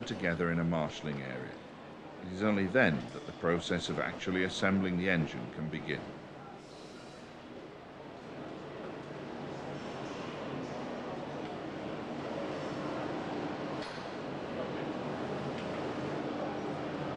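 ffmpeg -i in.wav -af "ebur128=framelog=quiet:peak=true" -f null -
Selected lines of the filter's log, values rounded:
Integrated loudness:
  I:         -35.9 LUFS
  Threshold: -46.5 LUFS
Loudness range:
  LRA:        12.1 LU
  Threshold: -56.7 LUFS
  LRA low:   -44.3 LUFS
  LRA high:  -32.2 LUFS
True peak:
  Peak:      -12.6 dBFS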